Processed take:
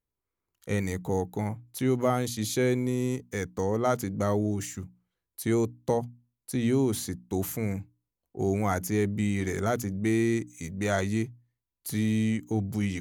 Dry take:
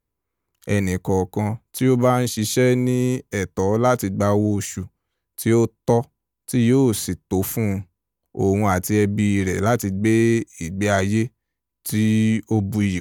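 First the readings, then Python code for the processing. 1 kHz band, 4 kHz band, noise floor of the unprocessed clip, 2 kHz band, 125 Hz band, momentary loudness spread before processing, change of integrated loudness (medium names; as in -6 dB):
-8.0 dB, -8.0 dB, -81 dBFS, -8.0 dB, -9.0 dB, 8 LU, -8.5 dB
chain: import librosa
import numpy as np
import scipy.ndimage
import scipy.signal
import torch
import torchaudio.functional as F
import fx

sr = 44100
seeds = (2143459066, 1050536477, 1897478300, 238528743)

y = fx.hum_notches(x, sr, base_hz=60, count=5)
y = F.gain(torch.from_numpy(y), -8.0).numpy()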